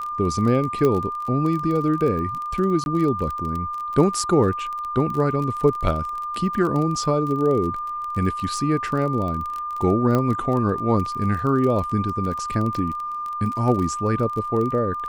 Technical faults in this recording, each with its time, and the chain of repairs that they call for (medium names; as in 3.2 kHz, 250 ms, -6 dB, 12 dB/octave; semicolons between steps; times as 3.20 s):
crackle 25 per s -27 dBFS
whine 1.2 kHz -26 dBFS
0.85 s: pop -10 dBFS
2.84–2.86 s: dropout 21 ms
10.15 s: pop -10 dBFS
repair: de-click; band-stop 1.2 kHz, Q 30; interpolate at 2.84 s, 21 ms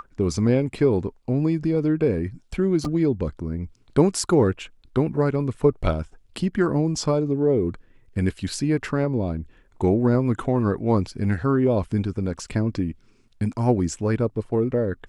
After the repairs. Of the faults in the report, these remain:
nothing left